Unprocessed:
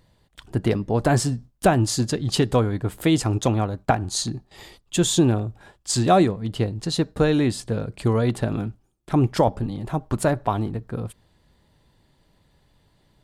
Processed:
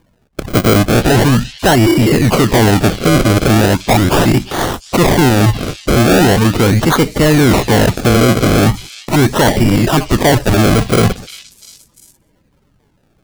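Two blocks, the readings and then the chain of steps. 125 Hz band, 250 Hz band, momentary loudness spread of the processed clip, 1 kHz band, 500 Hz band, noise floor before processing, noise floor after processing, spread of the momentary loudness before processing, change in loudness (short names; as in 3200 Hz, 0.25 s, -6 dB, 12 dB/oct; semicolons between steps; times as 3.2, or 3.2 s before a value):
+11.5 dB, +11.5 dB, 5 LU, +10.0 dB, +11.0 dB, -64 dBFS, -57 dBFS, 11 LU, +11.5 dB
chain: bin magnitudes rounded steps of 30 dB; gate -50 dBFS, range -25 dB; spectral repair 1.89–2.13, 310–11000 Hz both; reverse; compressor 6:1, threshold -29 dBFS, peak gain reduction 15.5 dB; reverse; decimation with a swept rate 33×, swing 100% 0.39 Hz; soft clip -32 dBFS, distortion -10 dB; on a send: delay with a stepping band-pass 0.348 s, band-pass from 3600 Hz, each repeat 0.7 oct, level -12 dB; on the sum: maximiser +34.5 dB; gain -4.5 dB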